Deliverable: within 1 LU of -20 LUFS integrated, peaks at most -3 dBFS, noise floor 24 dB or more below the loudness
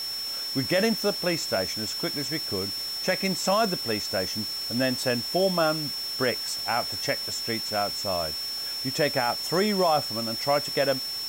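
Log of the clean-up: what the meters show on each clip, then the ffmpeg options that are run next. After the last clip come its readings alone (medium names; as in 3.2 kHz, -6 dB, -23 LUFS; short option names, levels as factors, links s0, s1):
steady tone 5.4 kHz; tone level -30 dBFS; noise floor -33 dBFS; noise floor target -50 dBFS; loudness -26.0 LUFS; peak level -12.0 dBFS; loudness target -20.0 LUFS
-> -af "bandreject=f=5400:w=30"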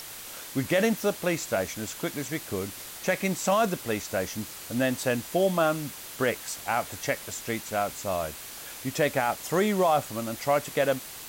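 steady tone not found; noise floor -42 dBFS; noise floor target -52 dBFS
-> -af "afftdn=nr=10:nf=-42"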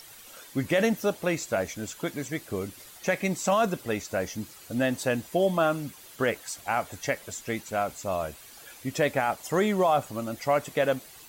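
noise floor -49 dBFS; noise floor target -53 dBFS
-> -af "afftdn=nr=6:nf=-49"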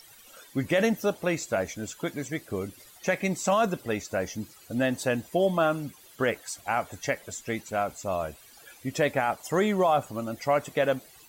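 noise floor -53 dBFS; loudness -28.5 LUFS; peak level -13.5 dBFS; loudness target -20.0 LUFS
-> -af "volume=2.66"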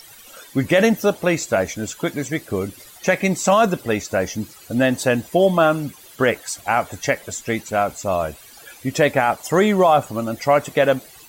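loudness -20.0 LUFS; peak level -5.0 dBFS; noise floor -45 dBFS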